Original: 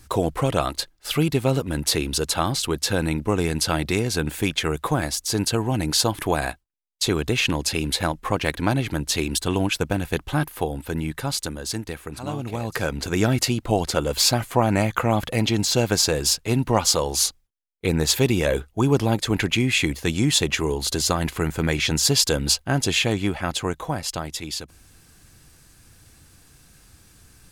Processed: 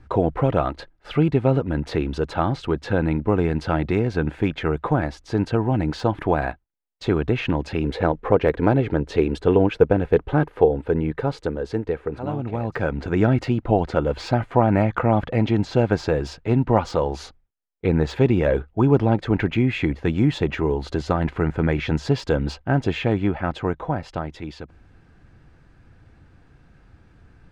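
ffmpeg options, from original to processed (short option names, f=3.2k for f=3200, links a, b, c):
-filter_complex "[0:a]asettb=1/sr,asplit=3[a][b][c];[a]atrim=end=7.844[d];[b]atrim=start=7.84:end=12.26,asetpts=PTS-STARTPTS,afade=t=in:d=0.004:c=qsin,afade=t=out:st=4.416:d=0.004:c=qsin,equalizer=f=450:w=3:g=11.5[e];[c]atrim=start=12.256[f];[d][e]acrossfade=d=0.004:c1=hsin:c2=qsin[g];[g][f]acrossfade=d=0.004:c1=qsin:c2=hsin,lowpass=1.6k,bandreject=f=1.1k:w=11,deesser=0.9,volume=2.5dB"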